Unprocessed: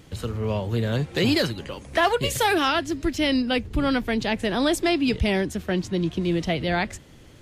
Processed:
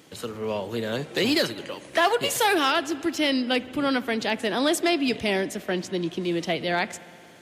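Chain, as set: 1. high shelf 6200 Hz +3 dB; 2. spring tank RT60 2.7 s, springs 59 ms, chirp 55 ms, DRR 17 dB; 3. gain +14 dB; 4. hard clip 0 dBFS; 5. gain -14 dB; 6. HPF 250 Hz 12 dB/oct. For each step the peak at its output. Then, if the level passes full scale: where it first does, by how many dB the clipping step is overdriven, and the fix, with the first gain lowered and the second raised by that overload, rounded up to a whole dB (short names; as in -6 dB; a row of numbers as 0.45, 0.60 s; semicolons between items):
-10.5, -10.5, +3.5, 0.0, -14.0, -11.0 dBFS; step 3, 3.5 dB; step 3 +10 dB, step 5 -10 dB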